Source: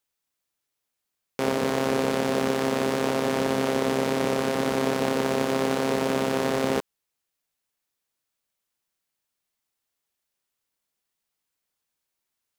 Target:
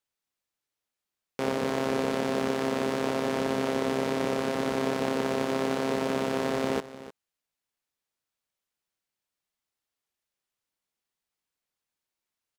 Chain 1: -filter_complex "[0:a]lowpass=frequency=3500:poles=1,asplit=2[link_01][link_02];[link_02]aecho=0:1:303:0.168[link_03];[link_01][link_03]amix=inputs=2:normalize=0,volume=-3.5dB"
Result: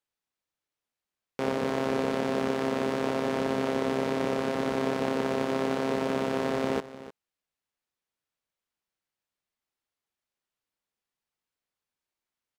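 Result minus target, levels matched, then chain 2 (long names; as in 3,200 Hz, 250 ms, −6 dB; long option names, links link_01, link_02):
8,000 Hz band −4.0 dB
-filter_complex "[0:a]lowpass=frequency=7400:poles=1,asplit=2[link_01][link_02];[link_02]aecho=0:1:303:0.168[link_03];[link_01][link_03]amix=inputs=2:normalize=0,volume=-3.5dB"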